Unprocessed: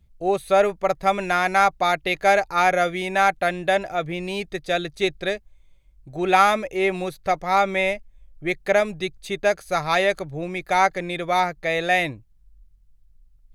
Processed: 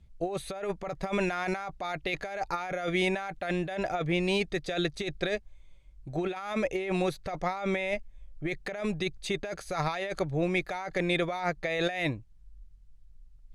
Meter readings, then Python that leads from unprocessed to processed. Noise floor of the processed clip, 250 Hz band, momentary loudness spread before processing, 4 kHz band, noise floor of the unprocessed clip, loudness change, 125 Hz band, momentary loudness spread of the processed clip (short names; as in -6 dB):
-54 dBFS, -2.5 dB, 10 LU, -6.5 dB, -56 dBFS, -9.5 dB, -1.0 dB, 7 LU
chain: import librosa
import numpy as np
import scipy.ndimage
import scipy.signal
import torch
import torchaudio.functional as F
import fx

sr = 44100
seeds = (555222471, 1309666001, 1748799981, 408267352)

y = scipy.signal.sosfilt(scipy.signal.butter(2, 8700.0, 'lowpass', fs=sr, output='sos'), x)
y = fx.over_compress(y, sr, threshold_db=-27.0, ratio=-1.0)
y = y * 10.0 ** (-4.0 / 20.0)